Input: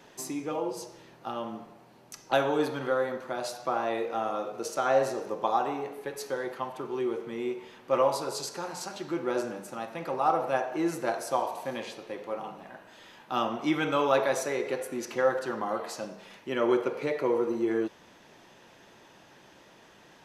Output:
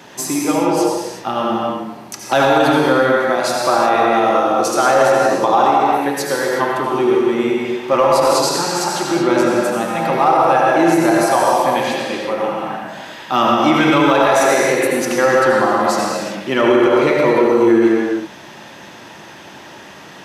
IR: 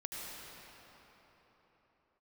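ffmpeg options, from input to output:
-filter_complex "[0:a]highpass=80,equalizer=f=470:t=o:w=0.54:g=-4.5,asplit=2[a][b];[b]asoftclip=type=hard:threshold=-21.5dB,volume=-6dB[c];[a][c]amix=inputs=2:normalize=0[d];[1:a]atrim=start_sample=2205,afade=t=out:st=0.44:d=0.01,atrim=end_sample=19845[e];[d][e]afir=irnorm=-1:irlink=0,alimiter=level_in=18.5dB:limit=-1dB:release=50:level=0:latency=1,volume=-3dB"

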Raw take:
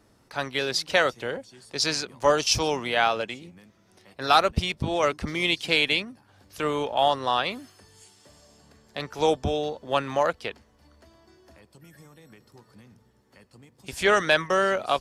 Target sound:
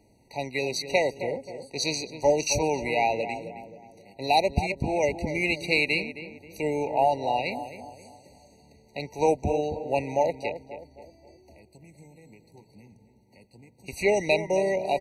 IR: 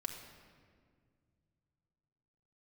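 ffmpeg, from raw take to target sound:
-filter_complex "[0:a]asplit=2[a][b];[b]adelay=266,lowpass=f=1.5k:p=1,volume=-10dB,asplit=2[c][d];[d]adelay=266,lowpass=f=1.5k:p=1,volume=0.44,asplit=2[e][f];[f]adelay=266,lowpass=f=1.5k:p=1,volume=0.44,asplit=2[g][h];[h]adelay=266,lowpass=f=1.5k:p=1,volume=0.44,asplit=2[i][j];[j]adelay=266,lowpass=f=1.5k:p=1,volume=0.44[k];[c][e][g][i][k]amix=inputs=5:normalize=0[l];[a][l]amix=inputs=2:normalize=0,afftfilt=real='re*eq(mod(floor(b*sr/1024/950),2),0)':imag='im*eq(mod(floor(b*sr/1024/950),2),0)':win_size=1024:overlap=0.75"

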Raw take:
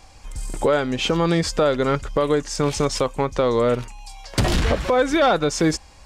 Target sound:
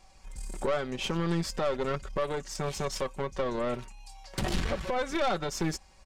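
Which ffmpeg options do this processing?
-af "aecho=1:1:5.3:0.56,aeval=exprs='(tanh(5.62*val(0)+0.65)-tanh(0.65))/5.62':c=same,volume=-8dB"

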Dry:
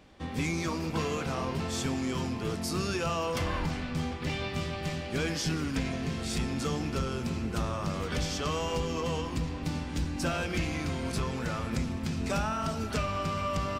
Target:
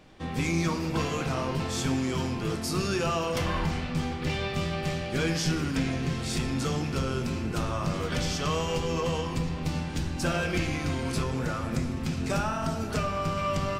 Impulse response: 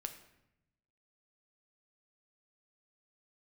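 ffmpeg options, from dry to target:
-filter_complex "[0:a]asplit=3[a][b][c];[a]afade=t=out:st=11.23:d=0.02[d];[b]adynamicequalizer=threshold=0.00447:dfrequency=3100:dqfactor=0.76:tfrequency=3100:tqfactor=0.76:attack=5:release=100:ratio=0.375:range=2:mode=cutabove:tftype=bell,afade=t=in:st=11.23:d=0.02,afade=t=out:st=13.36:d=0.02[e];[c]afade=t=in:st=13.36:d=0.02[f];[d][e][f]amix=inputs=3:normalize=0[g];[1:a]atrim=start_sample=2205,asetrate=48510,aresample=44100[h];[g][h]afir=irnorm=-1:irlink=0,volume=6dB"

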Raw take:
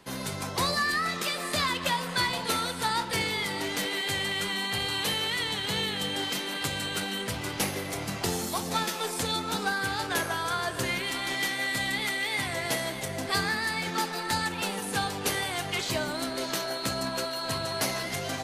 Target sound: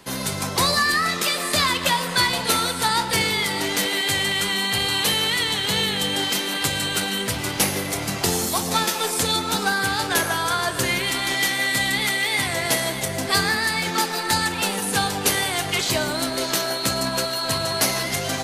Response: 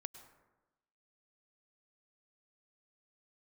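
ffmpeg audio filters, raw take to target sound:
-filter_complex "[0:a]asplit=2[a][b];[1:a]atrim=start_sample=2205,highshelf=f=3.8k:g=8[c];[b][c]afir=irnorm=-1:irlink=0,volume=5dB[d];[a][d]amix=inputs=2:normalize=0"

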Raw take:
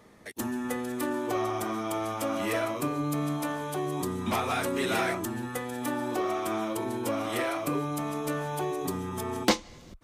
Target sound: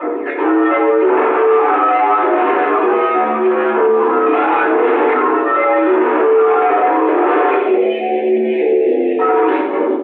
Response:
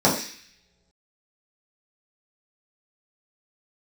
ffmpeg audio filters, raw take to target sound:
-filter_complex "[0:a]asplit=2[a][b];[b]acompressor=threshold=-39dB:ratio=6,volume=1.5dB[c];[a][c]amix=inputs=2:normalize=0,aphaser=in_gain=1:out_gain=1:delay=1.7:decay=0.69:speed=0.82:type=sinusoidal,asoftclip=type=tanh:threshold=-24dB,flanger=delay=17.5:depth=6.8:speed=0.34,aeval=exprs='0.0631*sin(PI/2*2*val(0)/0.0631)':c=same,asettb=1/sr,asplit=3[d][e][f];[d]atrim=end=7.554[g];[e]atrim=start=7.55:end=9.19,asetpts=PTS-STARTPTS,afade=t=in:d=0.004:c=qsin,afade=t=out:st=1.636:d=0.004:c=qsin,asuperstop=centerf=1100:order=8:qfactor=0.82[h];[f]atrim=start=9.186[i];[g][h]acrossfade=d=0.004:c1=hsin:c2=qsin[j];[j][i]acrossfade=d=0.004:c1=qsin:c2=hsin,asplit=2[k][l];[l]adelay=87,lowpass=f=1.8k:p=1,volume=-4.5dB,asplit=2[m][n];[n]adelay=87,lowpass=f=1.8k:p=1,volume=0.55,asplit=2[o][p];[p]adelay=87,lowpass=f=1.8k:p=1,volume=0.55,asplit=2[q][r];[r]adelay=87,lowpass=f=1.8k:p=1,volume=0.55,asplit=2[s][t];[t]adelay=87,lowpass=f=1.8k:p=1,volume=0.55,asplit=2[u][v];[v]adelay=87,lowpass=f=1.8k:p=1,volume=0.55,asplit=2[w][x];[x]adelay=87,lowpass=f=1.8k:p=1,volume=0.55[y];[k][m][o][q][s][u][w][y]amix=inputs=8:normalize=0[z];[1:a]atrim=start_sample=2205,asetrate=66150,aresample=44100[aa];[z][aa]afir=irnorm=-1:irlink=0,alimiter=limit=0dB:level=0:latency=1:release=11,highpass=f=200:t=q:w=0.5412,highpass=f=200:t=q:w=1.307,lowpass=f=2.7k:t=q:w=0.5176,lowpass=f=2.7k:t=q:w=0.7071,lowpass=f=2.7k:t=q:w=1.932,afreqshift=75,volume=-5dB"

